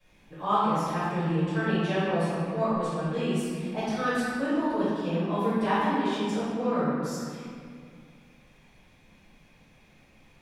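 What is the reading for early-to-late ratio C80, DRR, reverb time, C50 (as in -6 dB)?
-1.5 dB, -19.5 dB, 2.1 s, -4.0 dB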